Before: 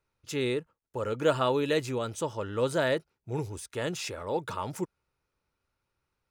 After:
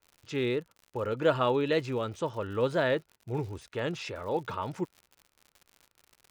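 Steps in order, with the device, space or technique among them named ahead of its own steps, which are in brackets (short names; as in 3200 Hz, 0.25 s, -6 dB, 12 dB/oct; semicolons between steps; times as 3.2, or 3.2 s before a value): lo-fi chain (LPF 3900 Hz 12 dB/oct; wow and flutter; crackle 90/s -42 dBFS)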